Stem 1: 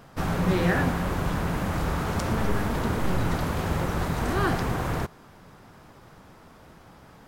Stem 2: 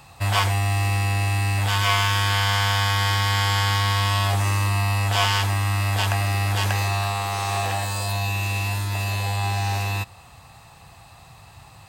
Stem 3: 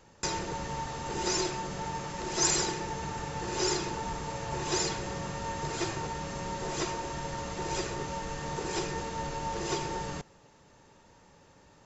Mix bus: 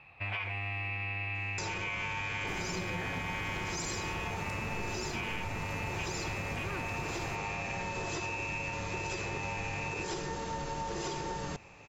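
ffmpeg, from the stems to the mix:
ffmpeg -i stem1.wav -i stem2.wav -i stem3.wav -filter_complex "[0:a]adelay=2300,volume=-8.5dB[link_01];[1:a]lowpass=frequency=2400:width_type=q:width=11,equalizer=frequency=420:width_type=o:width=1.5:gain=5.5,volume=-15dB[link_02];[2:a]adelay=1350,volume=1.5dB[link_03];[link_02][link_03]amix=inputs=2:normalize=0,equalizer=frequency=12000:width=1.6:gain=-9,alimiter=limit=-21dB:level=0:latency=1,volume=0dB[link_04];[link_01][link_04]amix=inputs=2:normalize=0,acompressor=threshold=-33dB:ratio=6" out.wav

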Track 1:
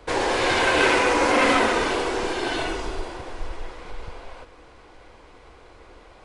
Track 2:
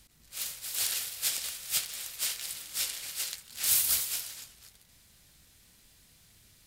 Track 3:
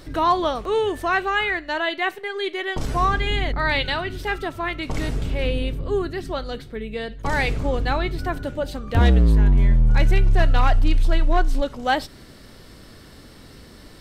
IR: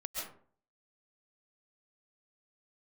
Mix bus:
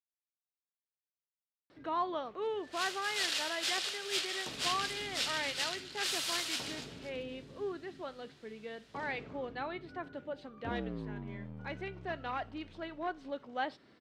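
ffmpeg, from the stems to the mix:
-filter_complex "[1:a]adynamicequalizer=threshold=0.00501:dfrequency=1800:dqfactor=0.7:tfrequency=1800:tqfactor=0.7:attack=5:release=100:ratio=0.375:range=2:mode=boostabove:tftype=highshelf,adelay=2400,volume=2.5dB,asplit=2[link_01][link_02];[link_02]volume=-11dB[link_03];[2:a]adelay=1700,volume=-14.5dB[link_04];[link_01]equalizer=frequency=2200:width=4.9:gain=-6.5,alimiter=limit=-15dB:level=0:latency=1:release=15,volume=0dB[link_05];[3:a]atrim=start_sample=2205[link_06];[link_03][link_06]afir=irnorm=-1:irlink=0[link_07];[link_04][link_05][link_07]amix=inputs=3:normalize=0,highpass=200,lowpass=3400"

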